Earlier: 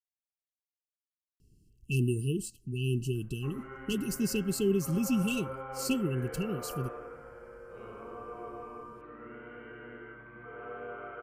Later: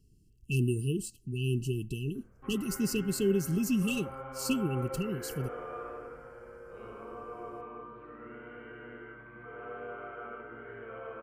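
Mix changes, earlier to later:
speech: entry −1.40 s
background: entry −1.00 s

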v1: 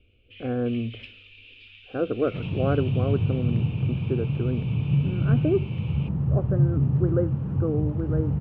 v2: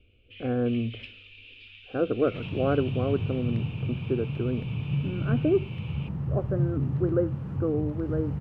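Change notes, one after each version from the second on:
second sound: add tilt shelving filter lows −6 dB, about 1,300 Hz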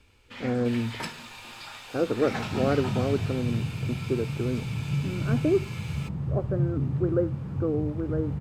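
first sound: remove flat-topped band-pass 2,800 Hz, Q 3.4

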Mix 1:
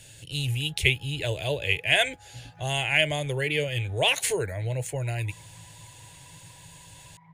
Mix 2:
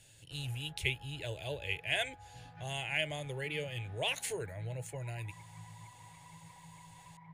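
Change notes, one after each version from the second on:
speech −11.5 dB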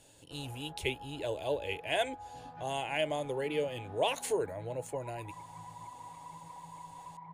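master: add octave-band graphic EQ 125/250/500/1,000/2,000 Hz −8/+11/+5/+10/−6 dB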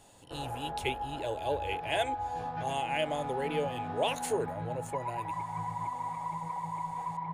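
background +12.0 dB

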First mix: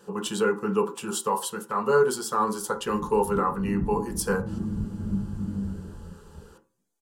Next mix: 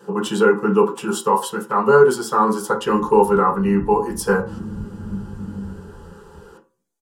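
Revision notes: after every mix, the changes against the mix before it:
speech: send +10.5 dB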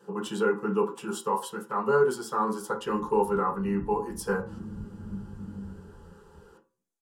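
speech −10.5 dB
background −9.0 dB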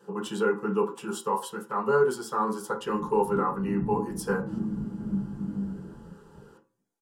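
background: send +10.0 dB

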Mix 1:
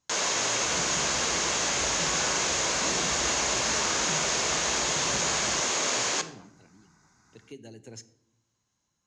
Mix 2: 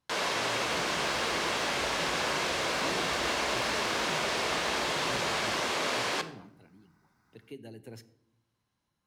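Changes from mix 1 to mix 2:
second sound −6.0 dB
master: remove low-pass with resonance 6,700 Hz, resonance Q 7.6

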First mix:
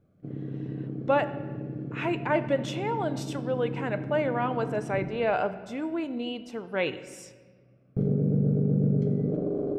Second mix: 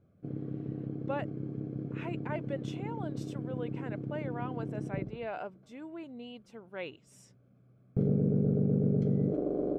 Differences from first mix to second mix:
speech −11.5 dB
reverb: off

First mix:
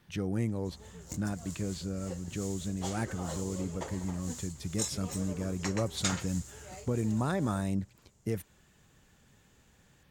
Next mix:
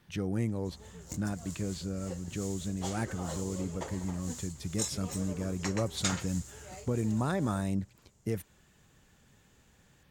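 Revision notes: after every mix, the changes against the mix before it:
nothing changed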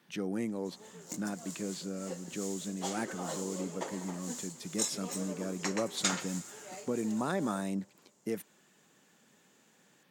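background: send +9.5 dB
master: add high-pass filter 190 Hz 24 dB per octave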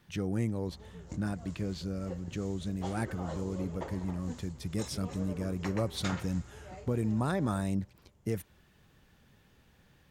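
background: add head-to-tape spacing loss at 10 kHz 23 dB
master: remove high-pass filter 190 Hz 24 dB per octave

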